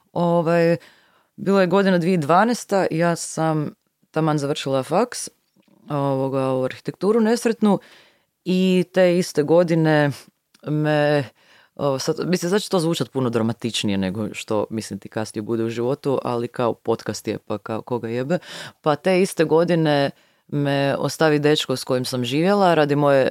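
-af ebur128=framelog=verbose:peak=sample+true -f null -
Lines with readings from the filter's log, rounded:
Integrated loudness:
  I:         -20.7 LUFS
  Threshold: -31.1 LUFS
Loudness range:
  LRA:         5.0 LU
  Threshold: -41.5 LUFS
  LRA low:   -24.4 LUFS
  LRA high:  -19.4 LUFS
Sample peak:
  Peak:       -3.6 dBFS
True peak:
  Peak:       -3.6 dBFS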